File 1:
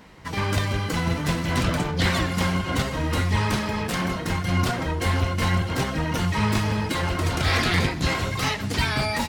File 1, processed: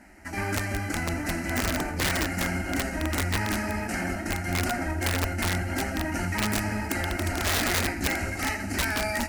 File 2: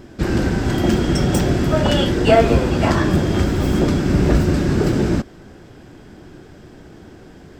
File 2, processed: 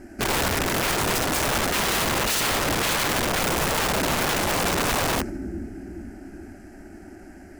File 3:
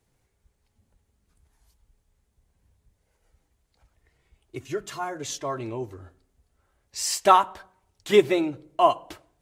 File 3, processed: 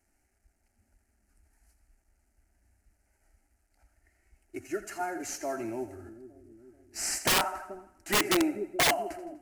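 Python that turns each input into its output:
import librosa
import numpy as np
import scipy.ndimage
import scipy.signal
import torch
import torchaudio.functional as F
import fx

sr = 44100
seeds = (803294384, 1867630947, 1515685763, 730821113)

y = fx.cvsd(x, sr, bps=64000)
y = fx.fixed_phaser(y, sr, hz=710.0, stages=8)
y = fx.echo_split(y, sr, split_hz=440.0, low_ms=432, high_ms=82, feedback_pct=52, wet_db=-12)
y = (np.mod(10.0 ** (18.5 / 20.0) * y + 1.0, 2.0) - 1.0) / 10.0 ** (18.5 / 20.0)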